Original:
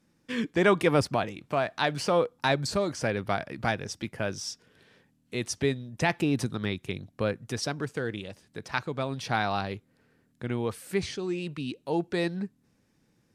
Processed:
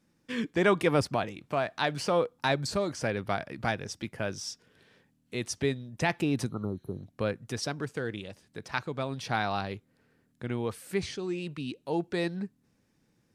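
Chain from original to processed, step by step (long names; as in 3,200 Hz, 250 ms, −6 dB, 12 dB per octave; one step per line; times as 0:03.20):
healed spectral selection 0:06.52–0:06.99, 1,400–9,800 Hz after
level −2 dB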